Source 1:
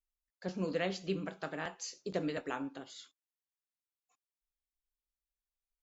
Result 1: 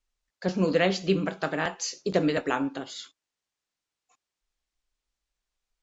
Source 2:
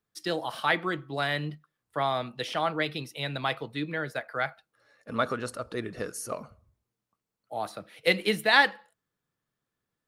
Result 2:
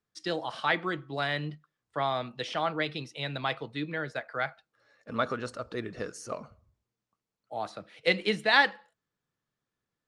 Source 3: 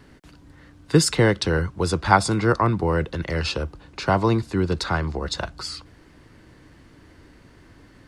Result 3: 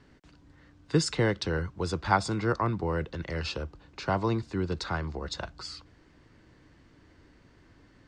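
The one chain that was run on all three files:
low-pass 7.7 kHz 24 dB/octave; peak normalisation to -9 dBFS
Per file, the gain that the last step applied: +11.0 dB, -1.5 dB, -8.0 dB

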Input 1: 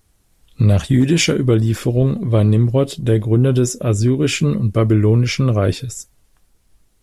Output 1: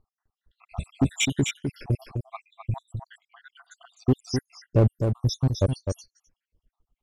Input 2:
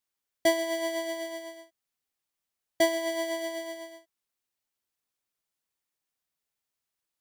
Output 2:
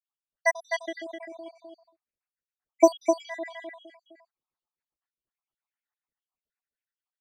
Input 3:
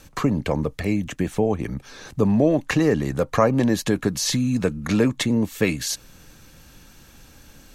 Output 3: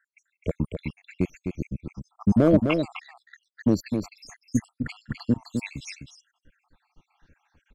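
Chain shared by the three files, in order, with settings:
random holes in the spectrogram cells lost 83%; bass shelf 77 Hz +6 dB; in parallel at +2 dB: peak limiter -13.5 dBFS; on the sum: overload inside the chain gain 6.5 dB; on a send: delay 256 ms -4 dB; on the sum: level-controlled noise filter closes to 2.2 kHz, open at -14 dBFS; upward expansion 1.5:1, over -32 dBFS; normalise loudness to -27 LUFS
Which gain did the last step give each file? -6.0 dB, +4.0 dB, -3.5 dB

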